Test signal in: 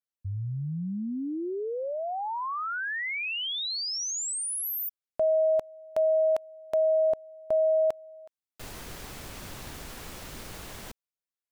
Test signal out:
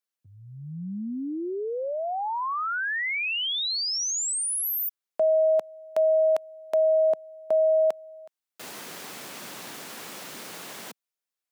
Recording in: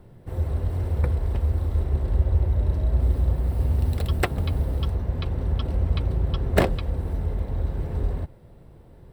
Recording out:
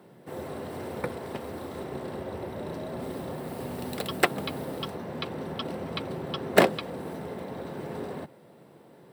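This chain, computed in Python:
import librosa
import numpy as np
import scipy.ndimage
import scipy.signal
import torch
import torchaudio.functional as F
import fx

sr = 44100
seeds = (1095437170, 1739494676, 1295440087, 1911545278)

y = scipy.signal.sosfilt(scipy.signal.butter(4, 170.0, 'highpass', fs=sr, output='sos'), x)
y = fx.low_shelf(y, sr, hz=430.0, db=-4.5)
y = y * 10.0 ** (4.0 / 20.0)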